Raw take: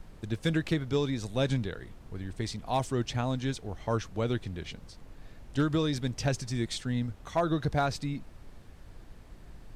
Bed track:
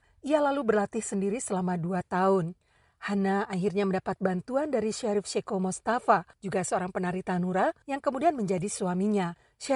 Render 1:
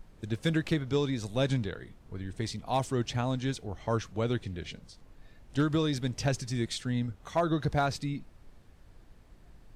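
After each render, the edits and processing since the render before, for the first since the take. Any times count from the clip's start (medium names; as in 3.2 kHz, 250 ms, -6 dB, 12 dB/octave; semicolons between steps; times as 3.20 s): noise print and reduce 6 dB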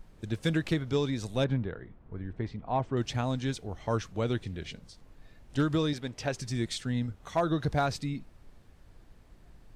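1.44–2.97 s: low-pass 1.7 kHz; 5.93–6.39 s: tone controls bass -9 dB, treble -6 dB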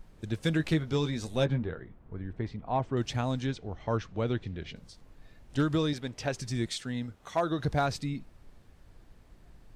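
0.58–1.82 s: doubling 13 ms -7 dB; 3.46–4.76 s: distance through air 120 m; 6.69–7.59 s: bass shelf 140 Hz -11 dB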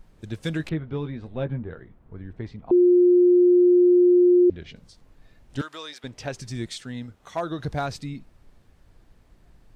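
0.69–1.71 s: distance through air 490 m; 2.71–4.50 s: bleep 356 Hz -12.5 dBFS; 5.61–6.04 s: high-pass 870 Hz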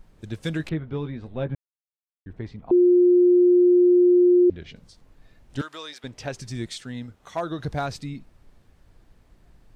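1.55–2.26 s: mute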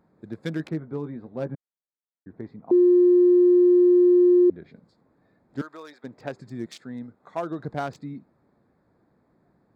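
local Wiener filter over 15 samples; Chebyshev high-pass 200 Hz, order 2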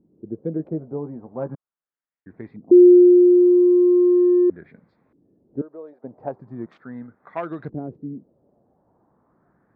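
LFO low-pass saw up 0.39 Hz 310–2700 Hz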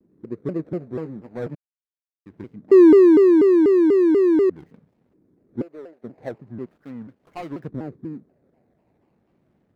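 median filter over 41 samples; vibrato with a chosen wave saw down 4.1 Hz, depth 250 cents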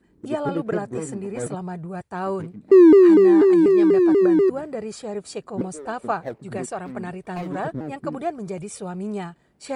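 add bed track -2.5 dB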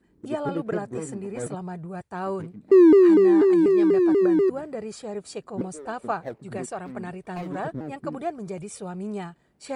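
trim -3 dB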